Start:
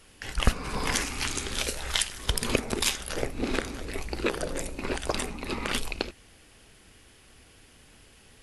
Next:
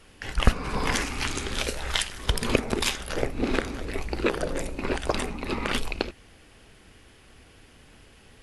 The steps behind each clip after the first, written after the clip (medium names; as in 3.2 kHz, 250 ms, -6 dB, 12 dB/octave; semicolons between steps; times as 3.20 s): treble shelf 4.5 kHz -8.5 dB; trim +3.5 dB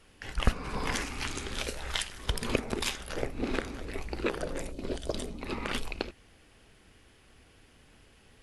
time-frequency box 4.72–5.41 s, 720–2900 Hz -10 dB; trim -6 dB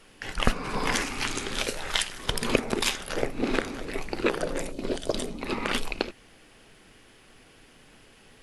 peaking EQ 61 Hz -14.5 dB 1.1 oct; trim +6 dB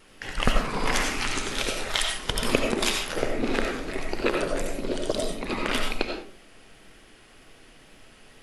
wow and flutter 43 cents; on a send at -2 dB: reverberation RT60 0.45 s, pre-delay 50 ms